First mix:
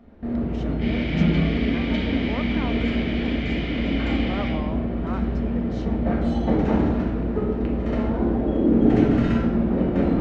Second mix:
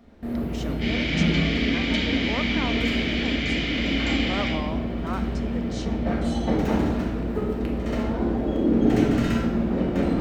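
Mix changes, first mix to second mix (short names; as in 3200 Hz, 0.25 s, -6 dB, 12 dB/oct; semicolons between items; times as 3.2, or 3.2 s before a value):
first sound -3.0 dB; master: remove tape spacing loss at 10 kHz 23 dB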